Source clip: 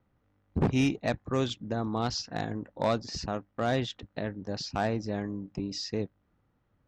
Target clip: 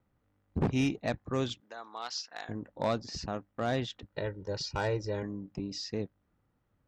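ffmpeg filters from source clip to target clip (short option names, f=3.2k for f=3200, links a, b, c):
-filter_complex "[0:a]asettb=1/sr,asplit=3[a][b][c];[a]atrim=end=1.604[d];[b]atrim=start=1.6:end=2.49,asetpts=PTS-STARTPTS,afade=t=in:d=0.004:c=qsin,afade=t=out:st=0.886:d=0.004:c=qsin,highpass=950[e];[c]atrim=start=2.486[f];[d][e]acrossfade=d=0.004:c1=hsin:c2=qsin[g];[g][f]acrossfade=d=0.004:c1=qsin:c2=hsin,asettb=1/sr,asplit=3[h][i][j];[h]atrim=end=4.124[k];[i]atrim=start=4.12:end=5.23,asetpts=PTS-STARTPTS,afade=t=in:d=0.004:c=qsin,afade=t=out:st=1.106:d=0.004:c=qsin,aecho=1:1:2.1:0.96,atrim=end_sample=48951[l];[j]atrim=start=5.226[m];[k][l]acrossfade=d=0.004:c1=hsin:c2=qsin[n];[n][m]acrossfade=d=0.004:c1=qsin:c2=hsin,volume=-3dB"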